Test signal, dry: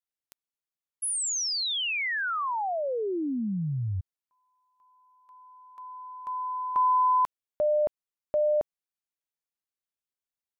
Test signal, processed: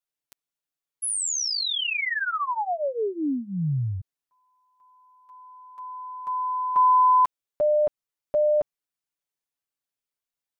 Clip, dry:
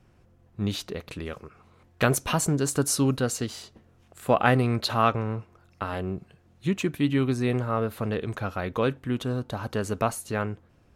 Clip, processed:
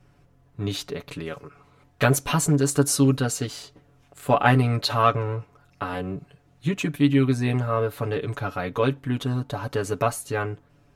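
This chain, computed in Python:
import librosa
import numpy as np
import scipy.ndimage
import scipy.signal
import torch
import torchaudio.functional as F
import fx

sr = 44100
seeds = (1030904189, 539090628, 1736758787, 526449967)

y = x + 0.83 * np.pad(x, (int(7.0 * sr / 1000.0), 0))[:len(x)]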